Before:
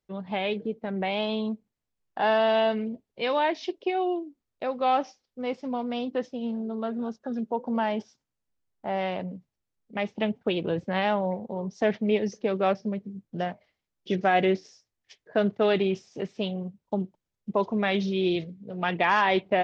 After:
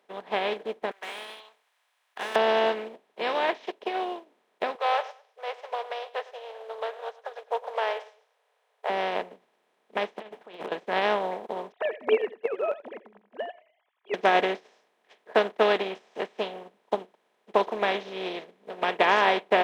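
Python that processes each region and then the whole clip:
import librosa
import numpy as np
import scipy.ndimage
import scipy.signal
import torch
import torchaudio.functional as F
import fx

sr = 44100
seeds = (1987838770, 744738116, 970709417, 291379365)

y = fx.chain(x, sr, fx.highpass(hz=1100.0, slope=24),
    fx.tilt_eq(slope=4.5),
    fx.clip_hard(threshold_db=-29.5), at=(0.91, 2.36))
y = fx.chain(y, sr, fx.brickwall_highpass(low_hz=430.0),
    fx.echo_feedback(ms=106, feedback_pct=25, wet_db=-19.0), at=(4.75, 8.9))
y = fx.chain(y, sr, fx.over_compress(threshold_db=-34.0, ratio=-0.5),
    fx.overload_stage(gain_db=29.0), at=(10.18, 10.72))
y = fx.chain(y, sr, fx.sine_speech(),
    fx.echo_single(ms=86, db=-18.0), at=(11.72, 14.14))
y = fx.bin_compress(y, sr, power=0.4)
y = scipy.signal.sosfilt(scipy.signal.butter(2, 350.0, 'highpass', fs=sr, output='sos'), y)
y = fx.upward_expand(y, sr, threshold_db=-33.0, expansion=2.5)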